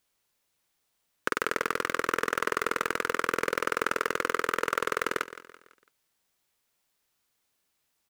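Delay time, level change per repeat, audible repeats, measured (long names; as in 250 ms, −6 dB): 167 ms, −7.5 dB, 3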